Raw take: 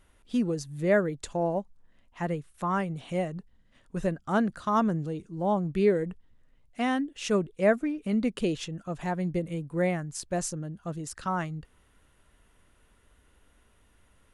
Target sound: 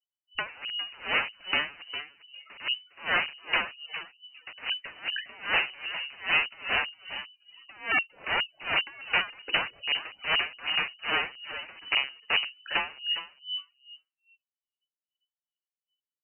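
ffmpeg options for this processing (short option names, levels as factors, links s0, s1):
-filter_complex "[0:a]acrossover=split=620[s0][s1];[s1]alimiter=level_in=1.19:limit=0.0631:level=0:latency=1:release=67,volume=0.841[s2];[s0][s2]amix=inputs=2:normalize=0,afftfilt=real='re*gte(hypot(re,im),0.0112)':imag='im*gte(hypot(re,im),0.0112)':win_size=1024:overlap=0.75,asoftclip=type=tanh:threshold=0.0891,agate=range=0.282:threshold=0.00126:ratio=16:detection=peak,acontrast=40,asetrate=38940,aresample=44100,aeval=exprs='(mod(16.8*val(0)+1,2)-1)/16.8':c=same,asplit=4[s3][s4][s5][s6];[s4]adelay=404,afreqshift=-140,volume=0.316[s7];[s5]adelay=808,afreqshift=-280,volume=0.0977[s8];[s6]adelay=1212,afreqshift=-420,volume=0.0305[s9];[s3][s7][s8][s9]amix=inputs=4:normalize=0,acontrast=23,afftdn=nr=26:nf=-38,lowpass=f=2600:t=q:w=0.5098,lowpass=f=2600:t=q:w=0.6013,lowpass=f=2600:t=q:w=0.9,lowpass=f=2600:t=q:w=2.563,afreqshift=-3000,aeval=exprs='val(0)*pow(10,-26*(0.5-0.5*cos(2*PI*2.5*n/s))/20)':c=same,volume=1.26"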